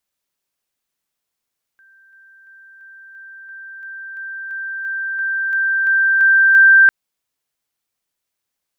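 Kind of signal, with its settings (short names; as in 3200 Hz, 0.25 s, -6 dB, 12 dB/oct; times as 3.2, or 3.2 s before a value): level ladder 1570 Hz -47.5 dBFS, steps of 3 dB, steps 15, 0.34 s 0.00 s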